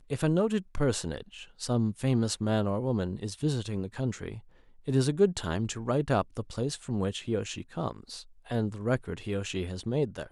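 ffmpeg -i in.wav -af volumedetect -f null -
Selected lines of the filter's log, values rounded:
mean_volume: -30.2 dB
max_volume: -12.0 dB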